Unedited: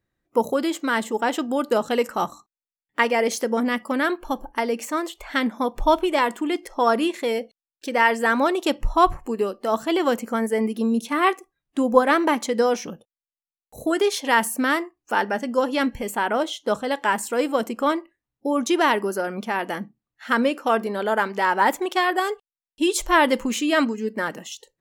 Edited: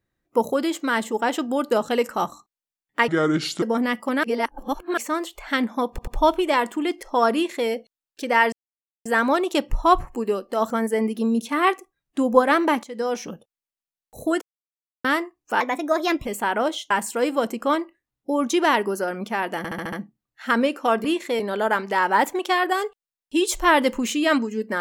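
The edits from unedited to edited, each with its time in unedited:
3.08–3.45 speed 68%
4.06–4.8 reverse
5.72 stutter 0.09 s, 3 plays
6.98–7.33 copy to 20.86
8.17 insert silence 0.53 s
9.82–10.3 cut
12.43–12.91 fade in, from -17.5 dB
14.01–14.64 mute
15.2–16 speed 123%
16.65–17.07 cut
19.74 stutter 0.07 s, 6 plays

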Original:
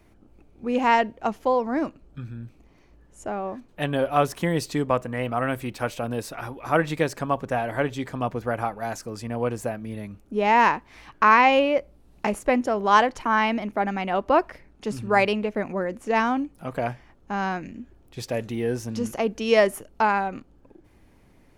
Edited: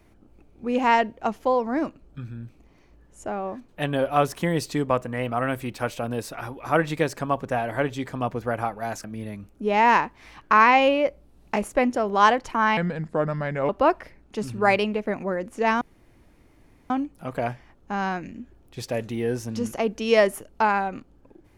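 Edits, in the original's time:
9.04–9.75 cut
13.48–14.18 speed 76%
16.3 insert room tone 1.09 s

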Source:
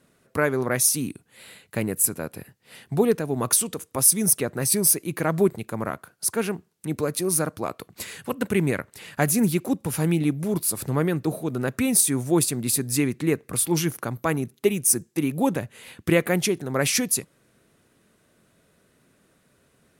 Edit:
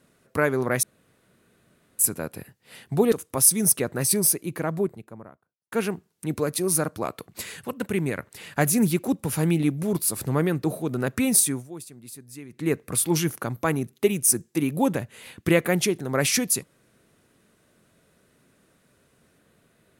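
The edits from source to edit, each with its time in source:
0.83–1.99 room tone
3.12–3.73 cut
4.64–6.33 studio fade out
8.26–8.8 gain -3.5 dB
12.04–13.35 dip -18.5 dB, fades 0.25 s

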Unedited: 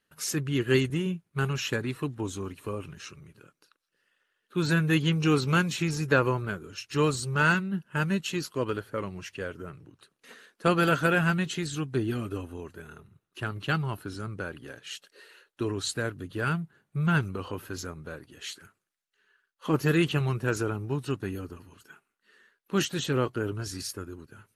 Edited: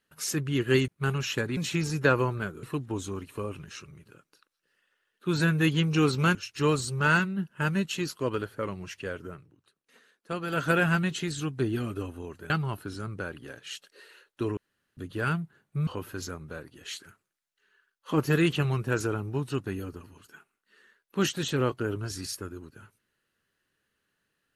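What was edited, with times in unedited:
0.88–1.23 cut
5.64–6.7 move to 1.92
9.63–11.04 dip -10 dB, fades 0.20 s
12.85–13.7 cut
15.77–16.17 room tone
17.07–17.43 cut

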